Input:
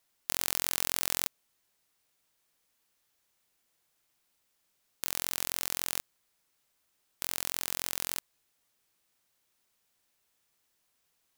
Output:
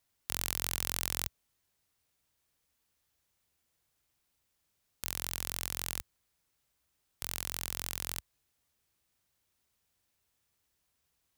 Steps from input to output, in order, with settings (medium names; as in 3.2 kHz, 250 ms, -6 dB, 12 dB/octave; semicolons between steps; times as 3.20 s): peaking EQ 66 Hz +13.5 dB 2.1 oct; trim -3.5 dB